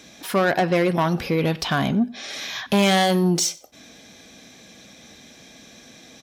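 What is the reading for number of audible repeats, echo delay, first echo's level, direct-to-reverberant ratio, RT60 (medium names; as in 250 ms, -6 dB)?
2, 94 ms, -22.5 dB, no reverb, no reverb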